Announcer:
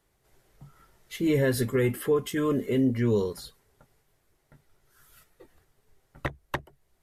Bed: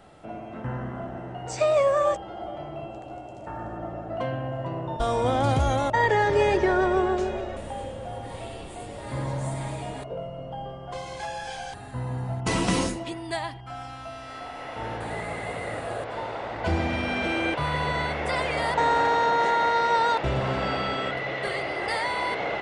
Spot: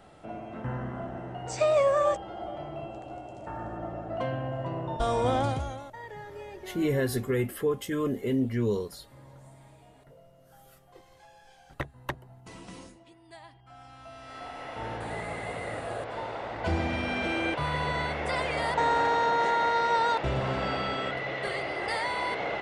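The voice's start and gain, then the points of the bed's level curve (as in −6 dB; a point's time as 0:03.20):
5.55 s, −3.0 dB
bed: 0:05.37 −2 dB
0:05.95 −21.5 dB
0:13.17 −21.5 dB
0:14.45 −3 dB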